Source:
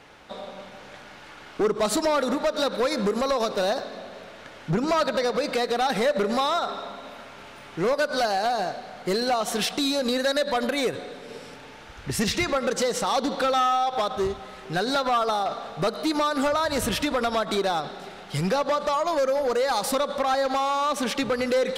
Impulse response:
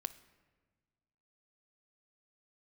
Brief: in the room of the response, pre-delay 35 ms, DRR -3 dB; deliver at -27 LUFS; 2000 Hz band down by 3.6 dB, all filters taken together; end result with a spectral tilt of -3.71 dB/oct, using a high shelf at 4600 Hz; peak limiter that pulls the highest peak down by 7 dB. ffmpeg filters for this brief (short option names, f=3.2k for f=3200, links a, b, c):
-filter_complex "[0:a]equalizer=f=2k:t=o:g=-5.5,highshelf=f=4.6k:g=3.5,alimiter=limit=-21.5dB:level=0:latency=1,asplit=2[a][b];[1:a]atrim=start_sample=2205,adelay=35[c];[b][c]afir=irnorm=-1:irlink=0,volume=4.5dB[d];[a][d]amix=inputs=2:normalize=0,volume=-3dB"